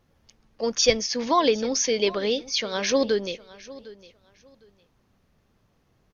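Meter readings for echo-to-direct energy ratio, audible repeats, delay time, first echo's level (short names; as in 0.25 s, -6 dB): -19.5 dB, 2, 0.757 s, -19.5 dB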